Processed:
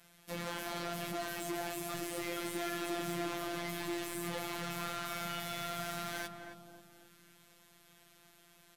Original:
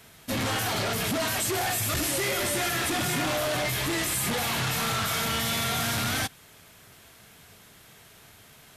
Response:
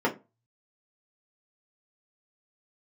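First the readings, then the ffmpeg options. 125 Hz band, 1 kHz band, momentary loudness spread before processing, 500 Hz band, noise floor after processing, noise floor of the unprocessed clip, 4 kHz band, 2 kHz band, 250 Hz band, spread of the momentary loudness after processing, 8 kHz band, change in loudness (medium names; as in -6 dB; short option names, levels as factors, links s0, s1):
-15.0 dB, -10.5 dB, 1 LU, -9.5 dB, -64 dBFS, -53 dBFS, -14.5 dB, -12.5 dB, -8.5 dB, 6 LU, -16.0 dB, -12.5 dB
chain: -filter_complex "[0:a]acrossover=split=140|2300[s0][s1][s2];[s2]asoftclip=type=tanh:threshold=0.0211[s3];[s0][s1][s3]amix=inputs=3:normalize=0,afftfilt=real='hypot(re,im)*cos(PI*b)':imag='0':win_size=1024:overlap=0.75,asplit=2[s4][s5];[s5]adelay=270,lowpass=f=1200:p=1,volume=0.562,asplit=2[s6][s7];[s7]adelay=270,lowpass=f=1200:p=1,volume=0.55,asplit=2[s8][s9];[s9]adelay=270,lowpass=f=1200:p=1,volume=0.55,asplit=2[s10][s11];[s11]adelay=270,lowpass=f=1200:p=1,volume=0.55,asplit=2[s12][s13];[s13]adelay=270,lowpass=f=1200:p=1,volume=0.55,asplit=2[s14][s15];[s15]adelay=270,lowpass=f=1200:p=1,volume=0.55,asplit=2[s16][s17];[s17]adelay=270,lowpass=f=1200:p=1,volume=0.55[s18];[s4][s6][s8][s10][s12][s14][s16][s18]amix=inputs=8:normalize=0,volume=0.422"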